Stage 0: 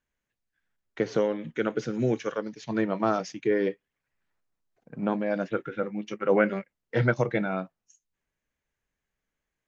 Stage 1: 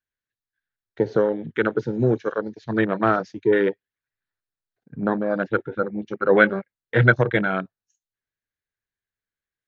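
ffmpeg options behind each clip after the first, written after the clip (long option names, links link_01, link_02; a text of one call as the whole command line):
ffmpeg -i in.wav -af "afwtdn=0.02,equalizer=frequency=100:width_type=o:width=0.67:gain=9,equalizer=frequency=400:width_type=o:width=0.67:gain=4,equalizer=frequency=1600:width_type=o:width=0.67:gain=10,equalizer=frequency=4000:width_type=o:width=0.67:gain=11,volume=2.5dB" out.wav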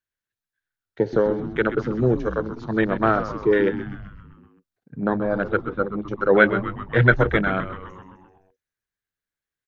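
ffmpeg -i in.wav -filter_complex "[0:a]asplit=8[link_01][link_02][link_03][link_04][link_05][link_06][link_07][link_08];[link_02]adelay=129,afreqshift=-95,volume=-11dB[link_09];[link_03]adelay=258,afreqshift=-190,volume=-15.4dB[link_10];[link_04]adelay=387,afreqshift=-285,volume=-19.9dB[link_11];[link_05]adelay=516,afreqshift=-380,volume=-24.3dB[link_12];[link_06]adelay=645,afreqshift=-475,volume=-28.7dB[link_13];[link_07]adelay=774,afreqshift=-570,volume=-33.2dB[link_14];[link_08]adelay=903,afreqshift=-665,volume=-37.6dB[link_15];[link_01][link_09][link_10][link_11][link_12][link_13][link_14][link_15]amix=inputs=8:normalize=0" out.wav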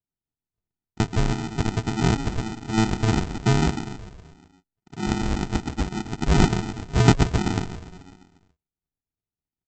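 ffmpeg -i in.wav -af "lowpass=frequency=3000:poles=1,aresample=16000,acrusher=samples=29:mix=1:aa=0.000001,aresample=44100,volume=-1dB" out.wav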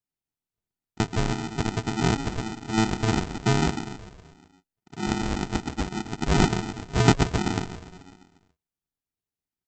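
ffmpeg -i in.wav -af "lowshelf=frequency=160:gain=-6" out.wav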